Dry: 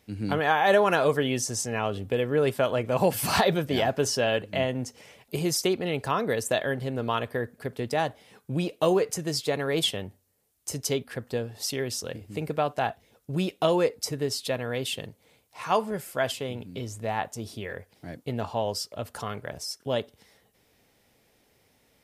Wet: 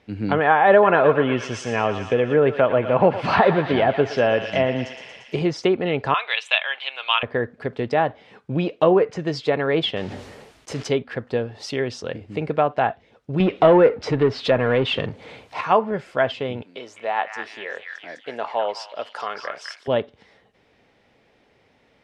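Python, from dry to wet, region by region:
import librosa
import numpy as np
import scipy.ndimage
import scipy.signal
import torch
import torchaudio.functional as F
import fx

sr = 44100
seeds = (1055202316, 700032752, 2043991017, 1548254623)

y = fx.chain(x, sr, fx.highpass(hz=54.0, slope=12),
    fx.echo_thinned(ms=116, feedback_pct=77, hz=890.0, wet_db=-8.5), at=(0.71, 5.42))
y = fx.chain(y, sr, fx.highpass(hz=890.0, slope=24),
    fx.band_shelf(hz=3000.0, db=15.5, octaves=1.0), at=(6.14, 7.23))
y = fx.chain(y, sr, fx.peak_eq(hz=82.0, db=-6.0, octaves=0.74),
    fx.mod_noise(seeds[0], snr_db=12),
    fx.sustainer(db_per_s=33.0), at=(9.96, 10.88))
y = fx.chain(y, sr, fx.highpass(hz=53.0, slope=24),
    fx.power_curve(exponent=0.7), at=(13.4, 15.61))
y = fx.chain(y, sr, fx.highpass(hz=520.0, slope=12),
    fx.echo_stepped(ms=206, hz=1700.0, octaves=0.7, feedback_pct=70, wet_db=-2.0), at=(16.62, 19.88))
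y = scipy.signal.sosfilt(scipy.signal.butter(2, 3000.0, 'lowpass', fs=sr, output='sos'), y)
y = fx.low_shelf(y, sr, hz=160.0, db=-6.0)
y = fx.env_lowpass_down(y, sr, base_hz=2100.0, full_db=-21.5)
y = y * 10.0 ** (7.5 / 20.0)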